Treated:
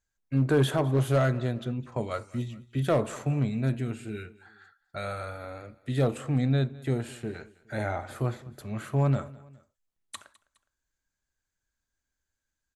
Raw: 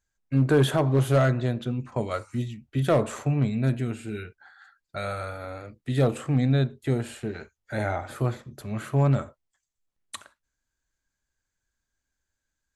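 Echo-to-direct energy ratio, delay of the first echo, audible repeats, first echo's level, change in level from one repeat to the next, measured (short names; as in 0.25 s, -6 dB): -20.5 dB, 0.207 s, 2, -21.5 dB, -6.5 dB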